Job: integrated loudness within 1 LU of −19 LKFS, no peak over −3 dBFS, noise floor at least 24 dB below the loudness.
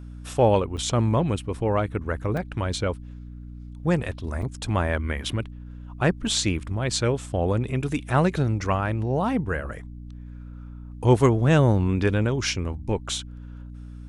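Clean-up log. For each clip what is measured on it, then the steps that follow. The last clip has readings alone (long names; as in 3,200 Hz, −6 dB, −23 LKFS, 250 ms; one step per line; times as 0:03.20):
number of dropouts 3; longest dropout 3.7 ms; mains hum 60 Hz; hum harmonics up to 300 Hz; level of the hum −36 dBFS; integrated loudness −24.5 LKFS; sample peak −6.0 dBFS; target loudness −19.0 LKFS
→ repair the gap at 0:00.77/0:02.37/0:04.42, 3.7 ms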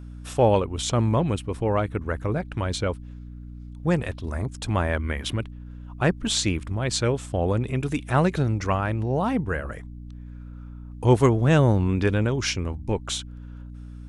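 number of dropouts 0; mains hum 60 Hz; hum harmonics up to 300 Hz; level of the hum −36 dBFS
→ mains-hum notches 60/120/180/240/300 Hz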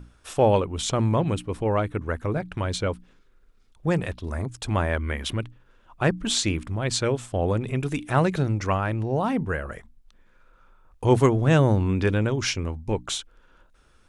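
mains hum none found; integrated loudness −25.0 LKFS; sample peak −6.5 dBFS; target loudness −19.0 LKFS
→ level +6 dB
brickwall limiter −3 dBFS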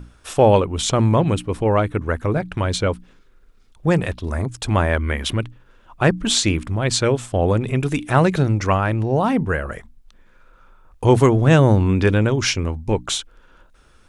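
integrated loudness −19.0 LKFS; sample peak −3.0 dBFS; background noise floor −52 dBFS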